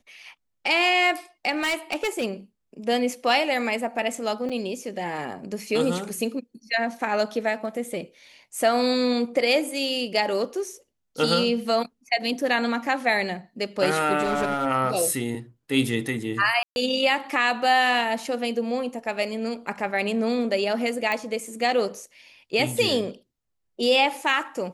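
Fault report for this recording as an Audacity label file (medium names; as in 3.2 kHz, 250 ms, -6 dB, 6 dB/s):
1.500000	2.250000	clipped -20.5 dBFS
4.490000	4.500000	dropout 5.5 ms
14.230000	14.670000	clipped -19.5 dBFS
16.630000	16.760000	dropout 131 ms
21.120000	21.120000	pop -13 dBFS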